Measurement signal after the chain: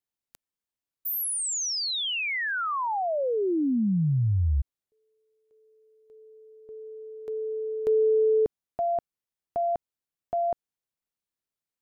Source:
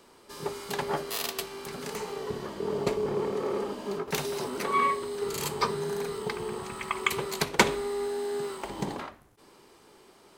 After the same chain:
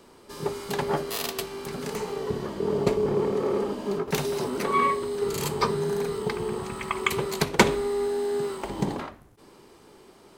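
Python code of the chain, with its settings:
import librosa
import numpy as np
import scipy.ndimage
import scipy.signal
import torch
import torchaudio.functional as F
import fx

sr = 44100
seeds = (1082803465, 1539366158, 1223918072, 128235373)

y = fx.low_shelf(x, sr, hz=480.0, db=6.5)
y = y * 10.0 ** (1.0 / 20.0)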